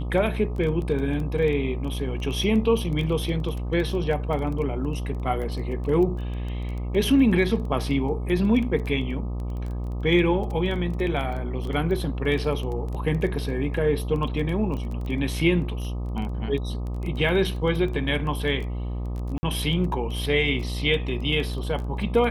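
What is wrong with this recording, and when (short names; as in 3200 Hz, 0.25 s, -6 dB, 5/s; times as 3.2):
buzz 60 Hz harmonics 21 -29 dBFS
crackle 14/s -30 dBFS
19.38–19.43 gap 50 ms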